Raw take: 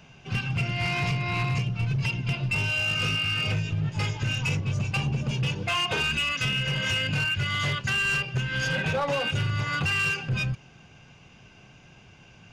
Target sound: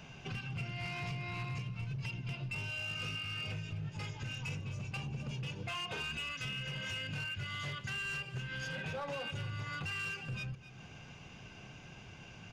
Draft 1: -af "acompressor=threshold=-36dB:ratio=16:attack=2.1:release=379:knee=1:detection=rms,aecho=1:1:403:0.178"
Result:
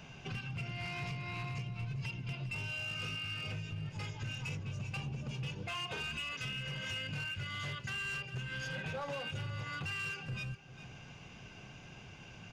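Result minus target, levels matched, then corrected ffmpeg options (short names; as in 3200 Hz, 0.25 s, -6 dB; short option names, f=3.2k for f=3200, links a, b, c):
echo 0.144 s late
-af "acompressor=threshold=-36dB:ratio=16:attack=2.1:release=379:knee=1:detection=rms,aecho=1:1:259:0.178"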